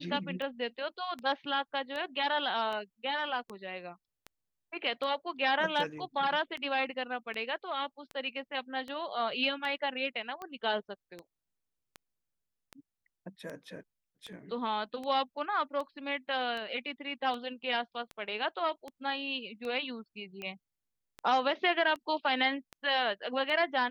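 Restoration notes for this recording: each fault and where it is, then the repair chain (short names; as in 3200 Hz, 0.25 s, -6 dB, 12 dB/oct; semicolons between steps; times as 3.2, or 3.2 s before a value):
tick 78 rpm -27 dBFS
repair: de-click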